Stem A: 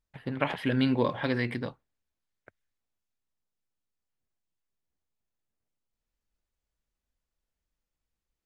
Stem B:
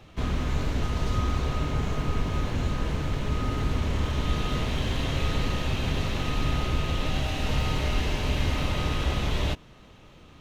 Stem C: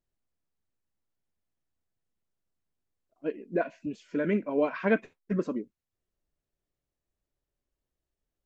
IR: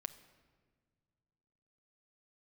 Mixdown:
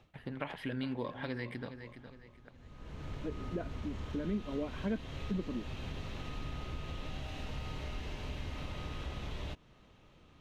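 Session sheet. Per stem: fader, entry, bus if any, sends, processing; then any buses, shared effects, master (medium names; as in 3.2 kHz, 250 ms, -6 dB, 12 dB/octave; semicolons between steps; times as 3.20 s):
-4.0 dB, 0.00 s, no send, echo send -15 dB, none
-10.0 dB, 0.00 s, no send, no echo send, treble shelf 7.9 kHz -6.5 dB; auto duck -24 dB, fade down 0.20 s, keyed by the first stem
-8.5 dB, 0.00 s, no send, no echo send, peaking EQ 190 Hz +12.5 dB 2 oct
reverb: none
echo: feedback delay 413 ms, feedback 31%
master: compression 2:1, threshold -40 dBFS, peak gain reduction 11 dB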